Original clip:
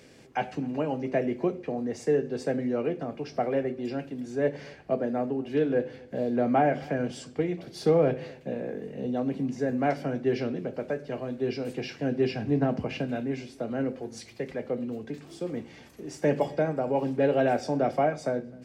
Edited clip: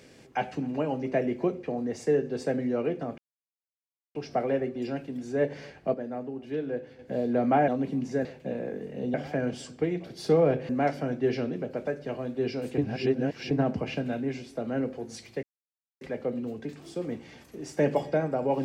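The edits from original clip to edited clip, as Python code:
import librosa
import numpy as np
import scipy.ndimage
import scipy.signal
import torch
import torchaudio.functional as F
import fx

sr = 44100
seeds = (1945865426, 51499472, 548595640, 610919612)

y = fx.edit(x, sr, fx.insert_silence(at_s=3.18, length_s=0.97),
    fx.clip_gain(start_s=4.97, length_s=1.05, db=-6.5),
    fx.swap(start_s=6.71, length_s=1.55, other_s=9.15, other_length_s=0.57),
    fx.reverse_span(start_s=11.81, length_s=0.73),
    fx.insert_silence(at_s=14.46, length_s=0.58), tone=tone)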